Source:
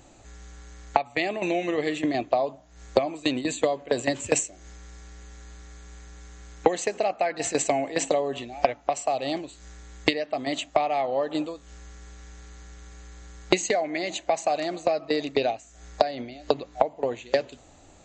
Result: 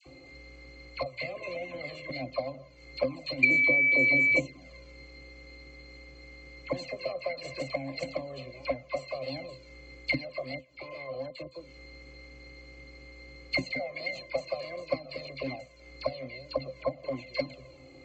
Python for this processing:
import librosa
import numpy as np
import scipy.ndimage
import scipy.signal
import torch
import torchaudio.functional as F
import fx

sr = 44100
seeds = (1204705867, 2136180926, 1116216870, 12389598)

y = fx.bin_compress(x, sr, power=0.6)
y = fx.level_steps(y, sr, step_db=23, at=(10.45, 11.51))
y = fx.low_shelf(y, sr, hz=230.0, db=8.0)
y = fx.octave_resonator(y, sr, note='C', decay_s=0.18)
y = fx.dispersion(y, sr, late='lows', ms=63.0, hz=1200.0)
y = fx.dmg_tone(y, sr, hz=2300.0, level_db=-23.0, at=(3.42, 4.38), fade=0.02)
y = fx.weighting(y, sr, curve='D')
y = fx.env_flanger(y, sr, rest_ms=2.7, full_db=-18.0)
y = fx.hpss(y, sr, part='percussive', gain_db=9)
y = y * 10.0 ** (-2.0 / 20.0)